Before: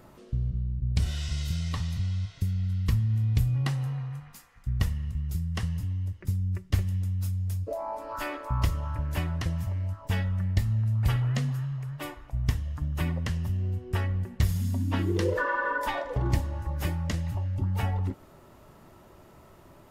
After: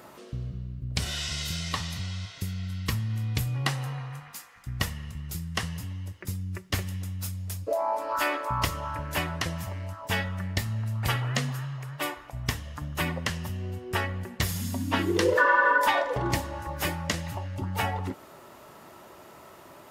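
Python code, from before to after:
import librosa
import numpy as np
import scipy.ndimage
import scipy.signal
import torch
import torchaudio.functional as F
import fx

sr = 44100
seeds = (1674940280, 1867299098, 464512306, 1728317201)

y = fx.highpass(x, sr, hz=180.0, slope=6)
y = fx.low_shelf(y, sr, hz=370.0, db=-8.0)
y = y * librosa.db_to_amplitude(8.5)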